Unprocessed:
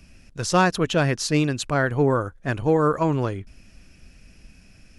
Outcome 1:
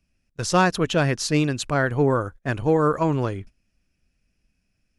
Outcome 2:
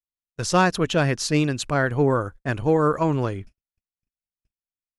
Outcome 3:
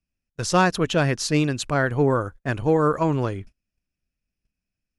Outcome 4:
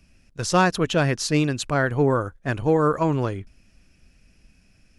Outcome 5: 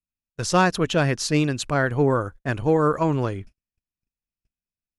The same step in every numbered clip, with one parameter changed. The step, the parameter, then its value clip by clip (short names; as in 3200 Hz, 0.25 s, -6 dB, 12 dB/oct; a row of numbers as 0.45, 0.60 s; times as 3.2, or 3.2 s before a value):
gate, range: -21, -59, -34, -7, -47 dB